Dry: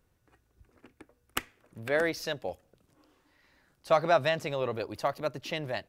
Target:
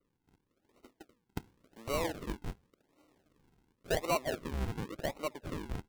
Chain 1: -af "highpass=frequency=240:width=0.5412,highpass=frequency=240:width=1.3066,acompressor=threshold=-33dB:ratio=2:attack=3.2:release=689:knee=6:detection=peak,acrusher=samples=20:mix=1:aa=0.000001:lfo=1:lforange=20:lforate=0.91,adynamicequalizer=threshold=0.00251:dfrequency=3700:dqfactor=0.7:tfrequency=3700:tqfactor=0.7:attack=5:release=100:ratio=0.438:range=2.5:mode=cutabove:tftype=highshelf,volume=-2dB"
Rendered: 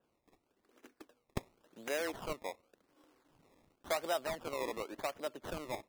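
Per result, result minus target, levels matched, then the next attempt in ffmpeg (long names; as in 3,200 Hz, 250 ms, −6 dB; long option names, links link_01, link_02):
sample-and-hold swept by an LFO: distortion −16 dB; downward compressor: peak gain reduction +3 dB
-af "highpass=frequency=240:width=0.5412,highpass=frequency=240:width=1.3066,acompressor=threshold=-33dB:ratio=2:attack=3.2:release=689:knee=6:detection=peak,acrusher=samples=51:mix=1:aa=0.000001:lfo=1:lforange=51:lforate=0.91,adynamicequalizer=threshold=0.00251:dfrequency=3700:dqfactor=0.7:tfrequency=3700:tqfactor=0.7:attack=5:release=100:ratio=0.438:range=2.5:mode=cutabove:tftype=highshelf,volume=-2dB"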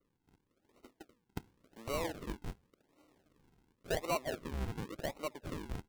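downward compressor: peak gain reduction +3 dB
-af "highpass=frequency=240:width=0.5412,highpass=frequency=240:width=1.3066,acompressor=threshold=-26.5dB:ratio=2:attack=3.2:release=689:knee=6:detection=peak,acrusher=samples=51:mix=1:aa=0.000001:lfo=1:lforange=51:lforate=0.91,adynamicequalizer=threshold=0.00251:dfrequency=3700:dqfactor=0.7:tfrequency=3700:tqfactor=0.7:attack=5:release=100:ratio=0.438:range=2.5:mode=cutabove:tftype=highshelf,volume=-2dB"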